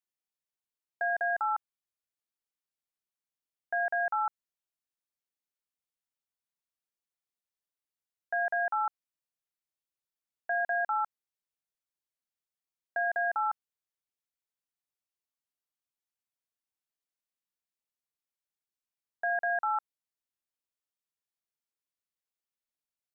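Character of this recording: noise floor -94 dBFS; spectral tilt -1.0 dB/oct

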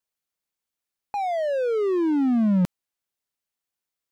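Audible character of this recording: noise floor -87 dBFS; spectral tilt -6.0 dB/oct

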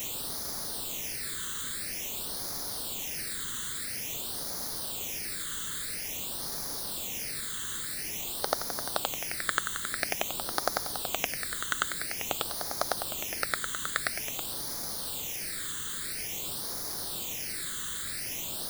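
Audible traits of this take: chopped level 1.8 Hz, depth 65%, duty 40%; a quantiser's noise floor 6-bit, dither triangular; phasing stages 8, 0.49 Hz, lowest notch 710–2700 Hz

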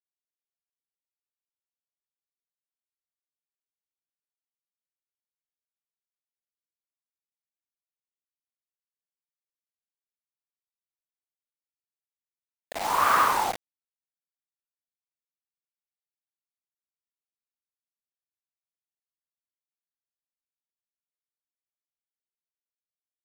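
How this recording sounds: tremolo saw up 0.74 Hz, depth 55%; a quantiser's noise floor 6-bit, dither none

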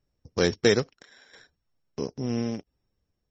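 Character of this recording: a buzz of ramps at a fixed pitch in blocks of 8 samples; tremolo saw down 0.75 Hz, depth 70%; MP3

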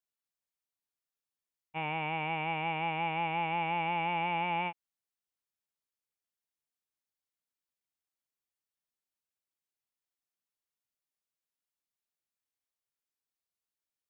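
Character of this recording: noise floor -93 dBFS; spectral tilt -2.5 dB/oct

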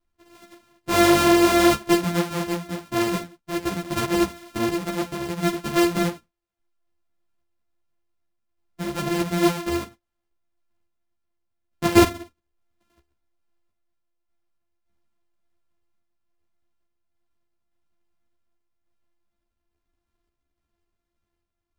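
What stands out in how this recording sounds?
a buzz of ramps at a fixed pitch in blocks of 128 samples; random-step tremolo; a shimmering, thickened sound

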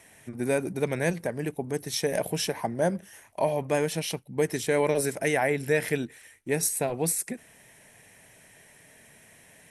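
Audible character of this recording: noise floor -56 dBFS; spectral tilt -4.0 dB/oct

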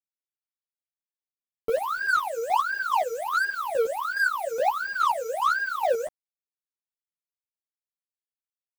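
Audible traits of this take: chopped level 2.4 Hz, depth 60%, duty 25%; a quantiser's noise floor 8-bit, dither none; a shimmering, thickened sound

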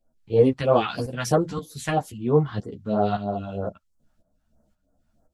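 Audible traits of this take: phasing stages 2, 3.1 Hz, lowest notch 420–2800 Hz; tremolo saw up 1.9 Hz, depth 70%; a shimmering, thickened sound

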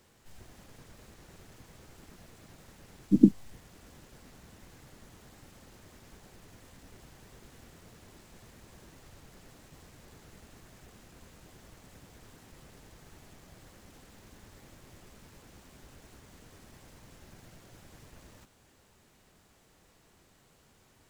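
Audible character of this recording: noise floor -64 dBFS; spectral tilt -9.0 dB/oct

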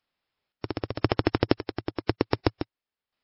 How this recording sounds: a buzz of ramps at a fixed pitch in blocks of 8 samples; chopped level 0.96 Hz, depth 65%, duty 50%; MP3

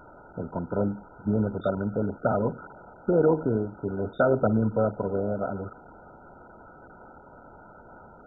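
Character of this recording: a quantiser's noise floor 6-bit, dither triangular; MP2

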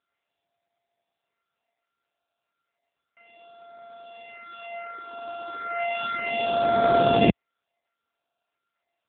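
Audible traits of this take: a buzz of ramps at a fixed pitch in blocks of 64 samples; phasing stages 6, 0.33 Hz, lowest notch 140–2500 Hz; AMR-NB

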